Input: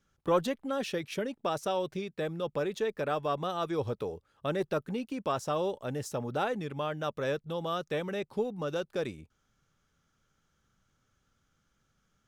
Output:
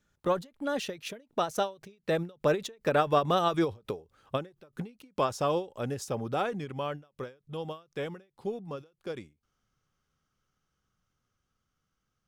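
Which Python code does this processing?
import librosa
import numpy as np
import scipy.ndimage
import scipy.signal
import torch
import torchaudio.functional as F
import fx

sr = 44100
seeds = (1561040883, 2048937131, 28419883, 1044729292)

y = fx.doppler_pass(x, sr, speed_mps=19, closest_m=28.0, pass_at_s=3.3)
y = fx.end_taper(y, sr, db_per_s=210.0)
y = y * librosa.db_to_amplitude(8.0)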